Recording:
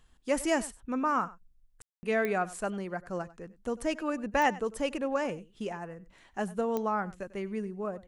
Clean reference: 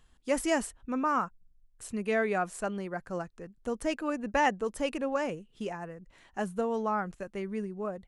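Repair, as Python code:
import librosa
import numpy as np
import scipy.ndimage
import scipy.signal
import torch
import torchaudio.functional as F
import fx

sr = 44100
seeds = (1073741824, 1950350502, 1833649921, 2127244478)

y = fx.fix_declick_ar(x, sr, threshold=10.0)
y = fx.fix_ambience(y, sr, seeds[0], print_start_s=5.87, print_end_s=6.37, start_s=1.82, end_s=2.03)
y = fx.fix_echo_inverse(y, sr, delay_ms=96, level_db=-19.0)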